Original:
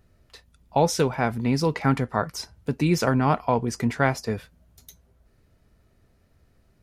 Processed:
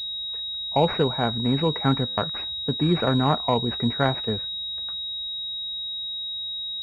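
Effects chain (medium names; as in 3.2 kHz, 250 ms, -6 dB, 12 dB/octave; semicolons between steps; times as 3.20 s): buffer glitch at 2.07/6.41 s, samples 512; class-D stage that switches slowly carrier 3.8 kHz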